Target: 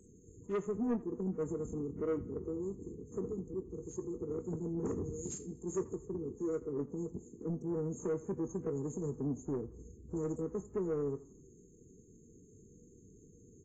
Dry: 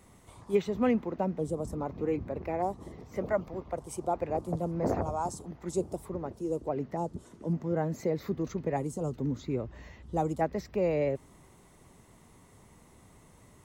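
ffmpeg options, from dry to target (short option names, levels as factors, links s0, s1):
-filter_complex "[0:a]asettb=1/sr,asplit=3[s0][s1][s2];[s0]atrim=end=3.434[s3];[s1]atrim=start=3.43:end=4.08,asetpts=PTS-STARTPTS,afade=t=in:d=0.004:c=qsin,afade=t=out:st=0.646:d=0.004:c=qsin,bandreject=f=114.3:t=h:w=4,bandreject=f=228.6:t=h:w=4,bandreject=f=342.9:t=h:w=4,bandreject=f=457.2:t=h:w=4,bandreject=f=571.5:t=h:w=4,bandreject=f=685.8:t=h:w=4,bandreject=f=800.1:t=h:w=4,bandreject=f=914.4:t=h:w=4,bandreject=f=1028.7:t=h:w=4,bandreject=f=1143:t=h:w=4,bandreject=f=1257.3:t=h:w=4,bandreject=f=1371.6:t=h:w=4,bandreject=f=1485.9:t=h:w=4,bandreject=f=1600.2:t=h:w=4,bandreject=f=1714.5:t=h:w=4,bandreject=f=1828.8:t=h:w=4,bandreject=f=1943.1:t=h:w=4,bandreject=f=2057.4:t=h:w=4,bandreject=f=2171.7:t=h:w=4,bandreject=f=2286:t=h:w=4,bandreject=f=2400.3:t=h:w=4,bandreject=f=2514.6:t=h:w=4,bandreject=f=2628.9:t=h:w=4,bandreject=f=2743.2:t=h:w=4,bandreject=f=2857.5:t=h:w=4,bandreject=f=2971.8:t=h:w=4,bandreject=f=3086.1:t=h:w=4,bandreject=f=3200.4:t=h:w=4,bandreject=f=3314.7:t=h:w=4,bandreject=f=3429:t=h:w=4,bandreject=f=3543.3:t=h:w=4,bandreject=f=3657.6:t=h:w=4,bandreject=f=3771.9:t=h:w=4[s4];[s2]atrim=start=4.076[s5];[s3][s4]acrossfade=d=0.004:c1=hsin:c2=qsin[s6];[s6][s5]acrossfade=d=0.004:c1=qsin:c2=hsin,asettb=1/sr,asplit=3[s7][s8][s9];[s7]atrim=end=5.134[s10];[s8]atrim=start=5.13:end=5.63,asetpts=PTS-STARTPTS,afade=t=in:d=0.004:c=qsin,afade=t=out:st=0.496:d=0.004:c=qsin,aemphasis=mode=production:type=50fm[s11];[s9]atrim=start=5.626[s12];[s10][s11]acrossfade=d=0.004:c1=hsin:c2=qsin[s13];[s13][s12]acrossfade=d=0.004:c1=qsin:c2=hsin,afftfilt=real='re*(1-between(b*sr/4096,490,6300))':imag='im*(1-between(b*sr/4096,490,6300))':win_size=4096:overlap=0.75,lowshelf=f=220:g=-9.5,asplit=2[s14][s15];[s15]acompressor=threshold=0.00794:ratio=12,volume=0.708[s16];[s14][s16]amix=inputs=2:normalize=0,asoftclip=type=tanh:threshold=0.0355,asplit=2[s17][s18];[s18]adelay=21,volume=0.224[s19];[s17][s19]amix=inputs=2:normalize=0,aecho=1:1:84|168|252:0.106|0.0392|0.0145" -ar 16000 -c:a aac -b:a 24k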